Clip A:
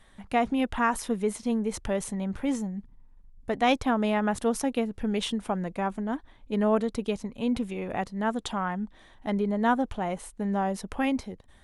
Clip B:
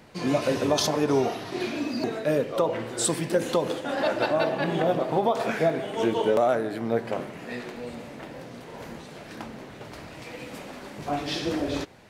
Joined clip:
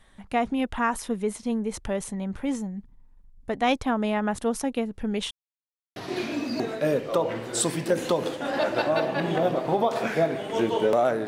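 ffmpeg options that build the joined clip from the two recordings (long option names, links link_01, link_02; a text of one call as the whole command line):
ffmpeg -i cue0.wav -i cue1.wav -filter_complex "[0:a]apad=whole_dur=11.27,atrim=end=11.27,asplit=2[link_01][link_02];[link_01]atrim=end=5.31,asetpts=PTS-STARTPTS,afade=type=out:start_time=5.306:duration=0.004:curve=hsin[link_03];[link_02]atrim=start=5.31:end=5.96,asetpts=PTS-STARTPTS,volume=0[link_04];[1:a]atrim=start=1.4:end=6.71,asetpts=PTS-STARTPTS,afade=type=in:duration=0.004:curve=hsin[link_05];[link_03][link_04][link_05]concat=n=3:v=0:a=1" out.wav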